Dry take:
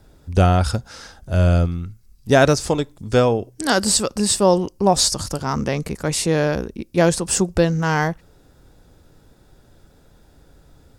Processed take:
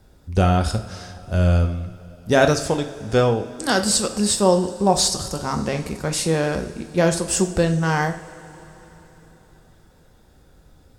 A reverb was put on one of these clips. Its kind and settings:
coupled-rooms reverb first 0.48 s, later 4.2 s, from −18 dB, DRR 5.5 dB
level −2.5 dB

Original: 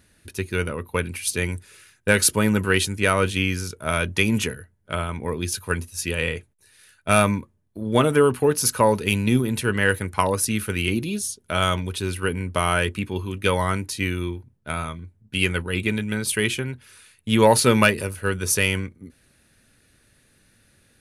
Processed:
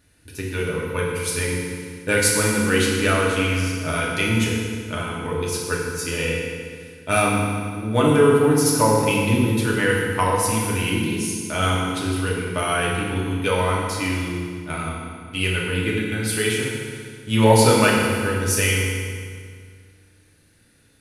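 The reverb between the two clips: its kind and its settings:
feedback delay network reverb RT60 2 s, low-frequency decay 1.2×, high-frequency decay 0.85×, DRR −4.5 dB
level −4.5 dB

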